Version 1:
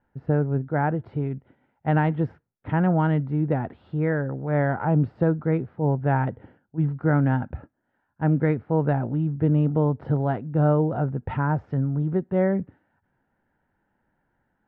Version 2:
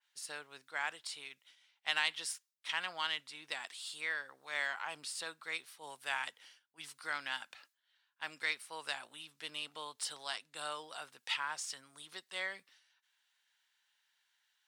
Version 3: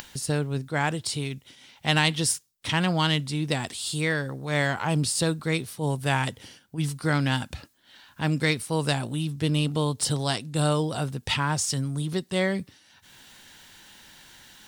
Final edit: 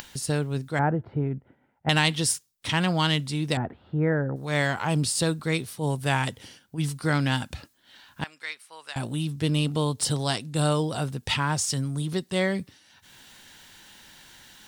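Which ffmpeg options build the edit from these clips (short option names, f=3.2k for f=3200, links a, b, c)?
-filter_complex "[0:a]asplit=2[a][b];[2:a]asplit=4[c][d][e][f];[c]atrim=end=0.792[g];[a]atrim=start=0.788:end=1.892[h];[d]atrim=start=1.888:end=3.572[i];[b]atrim=start=3.568:end=4.362[j];[e]atrim=start=4.358:end=8.242[k];[1:a]atrim=start=8.238:end=8.962[l];[f]atrim=start=8.958[m];[g][h]acrossfade=d=0.004:c1=hsin:c2=hsin[n];[n][i]acrossfade=d=0.004:c1=hsin:c2=hsin[o];[o][j]acrossfade=d=0.004:c1=hsin:c2=hsin[p];[p][k]acrossfade=d=0.004:c1=hsin:c2=hsin[q];[q][l]acrossfade=d=0.004:c1=hsin:c2=hsin[r];[r][m]acrossfade=d=0.004:c1=hsin:c2=hsin"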